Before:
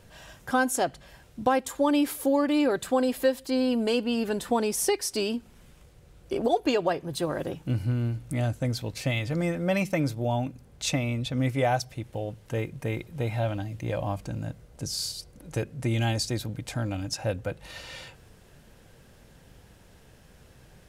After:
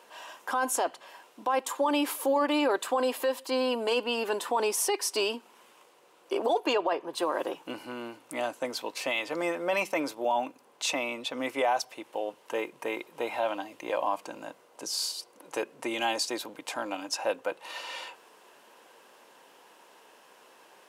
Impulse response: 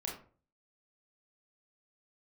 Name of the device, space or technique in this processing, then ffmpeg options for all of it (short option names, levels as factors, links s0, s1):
laptop speaker: -filter_complex "[0:a]asettb=1/sr,asplit=3[s0][s1][s2];[s0]atrim=end=6.734[s3];[s1]atrim=start=6.73:end=7.18,asetpts=PTS-STARTPTS,afade=t=in:d=0.004:c=qsin,afade=t=out:st=0.446:d=0.004:c=qsin,aemphasis=mode=reproduction:type=cd[s4];[s2]atrim=start=7.176[s5];[s3][s4]acrossfade=d=0.004:c1=hsin:c2=qsin[s6];[s6][s5]acrossfade=d=0.004:c1=qsin:c2=hsin,highpass=f=320:w=0.5412,highpass=f=320:w=1.3066,equalizer=f=1000:t=o:w=0.58:g=12,equalizer=f=2800:t=o:w=0.36:g=5,alimiter=limit=0.126:level=0:latency=1:release=11"